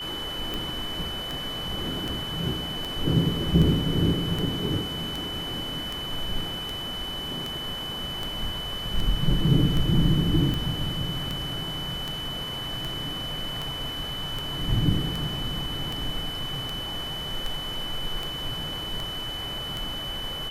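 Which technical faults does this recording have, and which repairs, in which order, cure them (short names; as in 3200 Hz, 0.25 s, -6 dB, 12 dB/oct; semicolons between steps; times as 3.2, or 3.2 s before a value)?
tick 78 rpm
tone 3000 Hz -32 dBFS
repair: de-click; notch 3000 Hz, Q 30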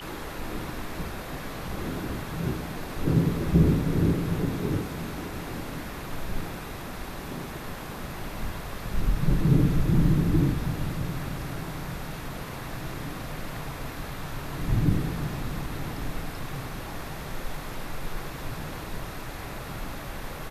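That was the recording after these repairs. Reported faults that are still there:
none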